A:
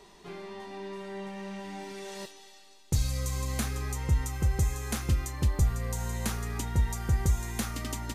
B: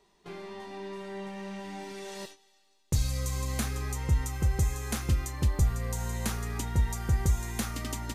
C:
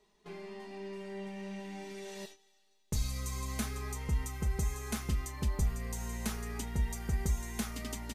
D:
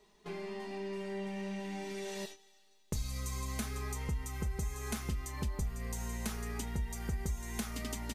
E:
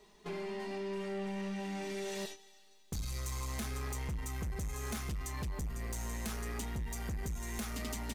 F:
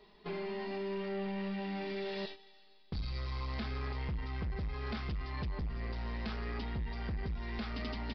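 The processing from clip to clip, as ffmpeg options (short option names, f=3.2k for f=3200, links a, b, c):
-af "agate=range=-12dB:threshold=-47dB:ratio=16:detection=peak"
-af "aecho=1:1:4.7:0.54,volume=-5.5dB"
-af "acompressor=threshold=-41dB:ratio=2.5,volume=4.5dB"
-af "asoftclip=type=tanh:threshold=-38dB,volume=4dB"
-af "aresample=11025,aresample=44100,volume=1dB"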